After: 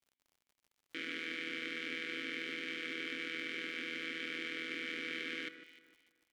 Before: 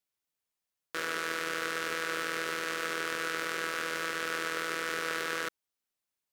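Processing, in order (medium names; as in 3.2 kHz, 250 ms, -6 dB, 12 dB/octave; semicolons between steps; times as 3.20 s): vowel filter i; echo whose repeats swap between lows and highs 151 ms, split 1.9 kHz, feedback 50%, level -10 dB; crackle 85 per s -65 dBFS; trim +8 dB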